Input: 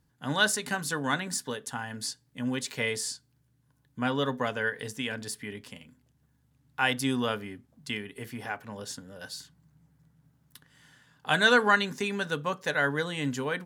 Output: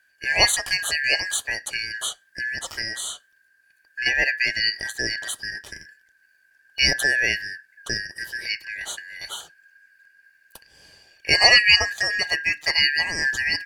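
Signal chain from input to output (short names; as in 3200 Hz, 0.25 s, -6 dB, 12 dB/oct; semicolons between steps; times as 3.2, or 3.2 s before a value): four-band scrambler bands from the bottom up 3142; 2.08–4.06 compressor 6:1, threshold -33 dBFS, peak gain reduction 8.5 dB; gain +7 dB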